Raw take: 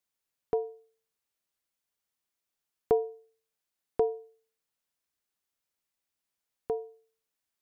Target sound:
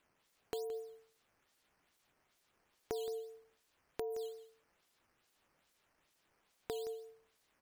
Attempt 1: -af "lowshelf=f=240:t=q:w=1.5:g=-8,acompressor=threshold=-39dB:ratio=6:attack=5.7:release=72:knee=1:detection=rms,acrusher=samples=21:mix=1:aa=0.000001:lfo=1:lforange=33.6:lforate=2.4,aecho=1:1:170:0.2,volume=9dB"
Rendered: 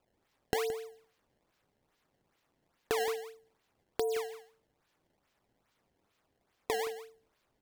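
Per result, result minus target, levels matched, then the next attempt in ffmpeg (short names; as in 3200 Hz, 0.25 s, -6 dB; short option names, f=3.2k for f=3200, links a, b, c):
compressor: peak gain reduction -8.5 dB; decimation with a swept rate: distortion +12 dB
-af "lowshelf=f=240:t=q:w=1.5:g=-8,acompressor=threshold=-49dB:ratio=6:attack=5.7:release=72:knee=1:detection=rms,acrusher=samples=21:mix=1:aa=0.000001:lfo=1:lforange=33.6:lforate=2.4,aecho=1:1:170:0.2,volume=9dB"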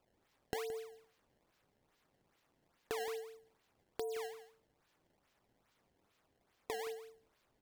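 decimation with a swept rate: distortion +11 dB
-af "lowshelf=f=240:t=q:w=1.5:g=-8,acompressor=threshold=-49dB:ratio=6:attack=5.7:release=72:knee=1:detection=rms,acrusher=samples=7:mix=1:aa=0.000001:lfo=1:lforange=11.2:lforate=2.4,aecho=1:1:170:0.2,volume=9dB"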